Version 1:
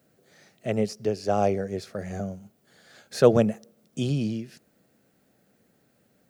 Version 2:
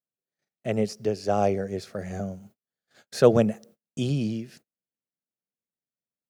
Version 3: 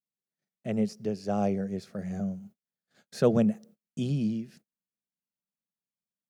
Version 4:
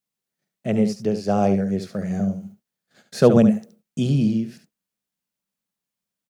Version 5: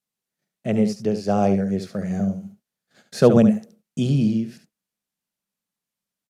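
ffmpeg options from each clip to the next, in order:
-af "agate=range=-37dB:threshold=-51dB:ratio=16:detection=peak"
-af "equalizer=f=190:t=o:w=0.8:g=10.5,volume=-7.5dB"
-af "aecho=1:1:71:0.335,volume=8.5dB"
-af "aresample=32000,aresample=44100"

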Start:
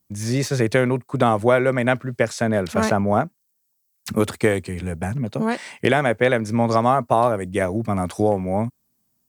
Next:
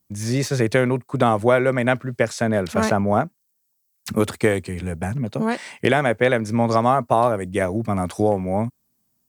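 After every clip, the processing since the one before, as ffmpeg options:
-af anull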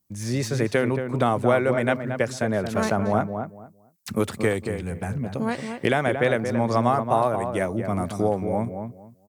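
-filter_complex "[0:a]asplit=2[a][b];[b]adelay=227,lowpass=f=1.4k:p=1,volume=-6.5dB,asplit=2[c][d];[d]adelay=227,lowpass=f=1.4k:p=1,volume=0.22,asplit=2[e][f];[f]adelay=227,lowpass=f=1.4k:p=1,volume=0.22[g];[a][c][e][g]amix=inputs=4:normalize=0,volume=-4dB"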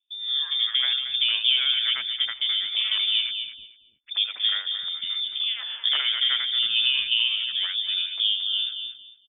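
-filter_complex "[0:a]lowpass=f=3.1k:t=q:w=0.5098,lowpass=f=3.1k:t=q:w=0.6013,lowpass=f=3.1k:t=q:w=0.9,lowpass=f=3.1k:t=q:w=2.563,afreqshift=-3700,highshelf=f=2.8k:g=9,acrossover=split=330|2300[a][b][c];[b]adelay=80[d];[a]adelay=750[e];[e][d][c]amix=inputs=3:normalize=0,volume=-5dB"

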